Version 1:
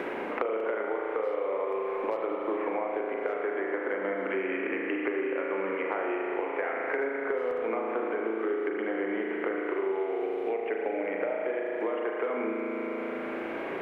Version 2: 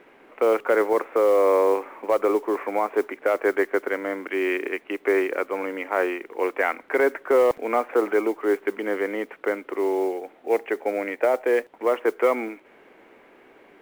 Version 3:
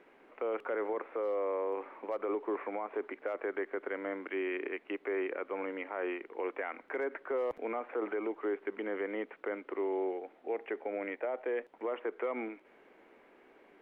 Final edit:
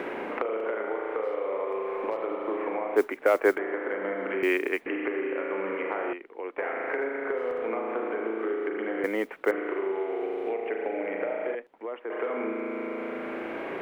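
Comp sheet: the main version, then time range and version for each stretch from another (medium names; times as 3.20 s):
1
2.96–3.58 s: from 2
4.43–4.86 s: from 2
6.13–6.58 s: from 3
9.04–9.51 s: from 2
11.55–12.10 s: from 3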